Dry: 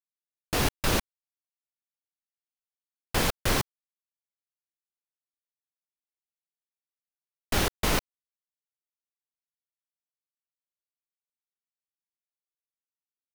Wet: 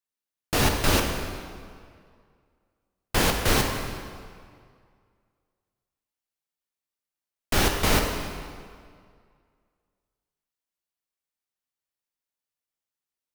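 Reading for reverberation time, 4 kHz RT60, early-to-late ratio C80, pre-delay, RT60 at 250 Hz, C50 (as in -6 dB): 2.1 s, 1.6 s, 5.5 dB, 8 ms, 2.0 s, 4.0 dB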